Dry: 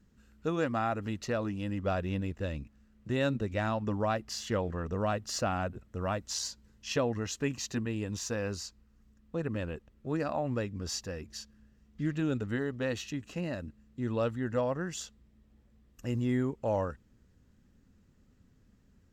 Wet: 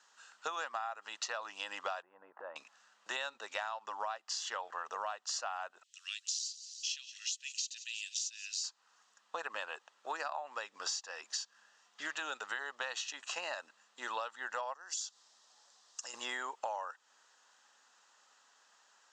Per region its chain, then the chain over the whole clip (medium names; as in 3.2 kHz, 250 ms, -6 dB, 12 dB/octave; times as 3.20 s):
2.02–2.56 s: low-pass 1.3 kHz 24 dB/octave + compression 5:1, threshold -38 dBFS
5.83–8.64 s: steep high-pass 2.6 kHz + feedback delay 175 ms, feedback 46%, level -20.5 dB
14.74–16.14 s: low-pass 8.3 kHz + resonant high shelf 3.6 kHz +9 dB, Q 1.5 + compression 2:1, threshold -53 dBFS
whole clip: elliptic band-pass 830–7300 Hz, stop band 80 dB; peaking EQ 2.2 kHz -10 dB 0.44 oct; compression 12:1, threshold -51 dBFS; trim +15.5 dB